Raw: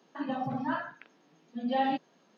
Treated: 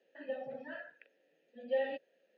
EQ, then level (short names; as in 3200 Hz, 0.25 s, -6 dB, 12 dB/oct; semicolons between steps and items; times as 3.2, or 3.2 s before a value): vowel filter e; high shelf 4300 Hz +6.5 dB; +2.5 dB